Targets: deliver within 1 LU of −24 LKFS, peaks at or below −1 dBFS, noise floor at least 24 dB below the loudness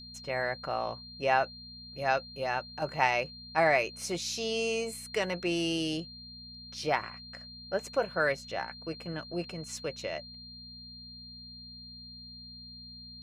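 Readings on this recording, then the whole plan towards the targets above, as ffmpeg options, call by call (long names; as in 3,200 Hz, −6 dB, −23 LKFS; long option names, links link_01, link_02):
mains hum 60 Hz; hum harmonics up to 240 Hz; level of the hum −50 dBFS; interfering tone 4,200 Hz; level of the tone −46 dBFS; integrated loudness −32.0 LKFS; sample peak −9.5 dBFS; target loudness −24.0 LKFS
→ -af "bandreject=frequency=60:width_type=h:width=4,bandreject=frequency=120:width_type=h:width=4,bandreject=frequency=180:width_type=h:width=4,bandreject=frequency=240:width_type=h:width=4"
-af "bandreject=frequency=4200:width=30"
-af "volume=8dB"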